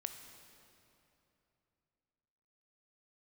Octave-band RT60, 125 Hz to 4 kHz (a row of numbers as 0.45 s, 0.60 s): 3.5 s, 3.3 s, 3.1 s, 2.9 s, 2.6 s, 2.2 s